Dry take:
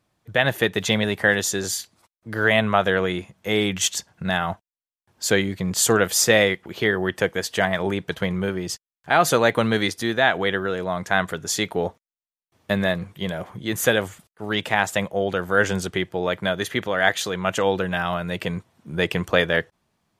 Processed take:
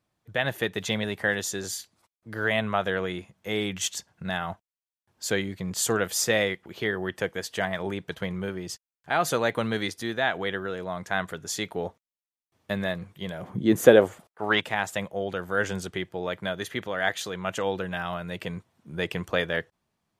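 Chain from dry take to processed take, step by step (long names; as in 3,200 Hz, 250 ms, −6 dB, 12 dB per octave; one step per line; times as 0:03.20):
0:13.42–0:14.60: parametric band 170 Hz → 1,200 Hz +15 dB 2.5 octaves
level −7 dB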